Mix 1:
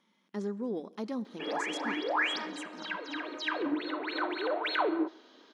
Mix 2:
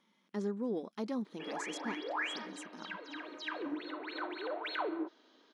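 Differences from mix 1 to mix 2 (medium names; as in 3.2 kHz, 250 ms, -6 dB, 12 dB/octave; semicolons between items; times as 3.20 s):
background -6.5 dB; reverb: off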